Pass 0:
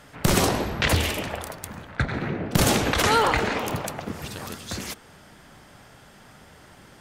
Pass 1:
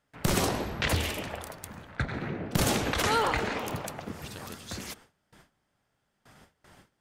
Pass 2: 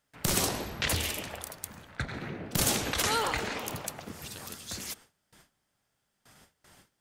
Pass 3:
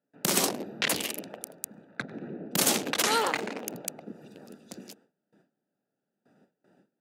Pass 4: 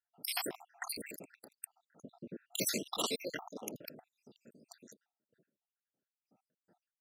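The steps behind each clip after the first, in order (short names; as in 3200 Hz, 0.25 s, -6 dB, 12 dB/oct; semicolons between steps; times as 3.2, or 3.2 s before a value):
gate with hold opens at -38 dBFS; gain -6 dB
high shelf 3500 Hz +10.5 dB; gain -4.5 dB
Wiener smoothing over 41 samples; HPF 190 Hz 24 dB/oct; gain +4 dB
random spectral dropouts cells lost 76%; gain -5 dB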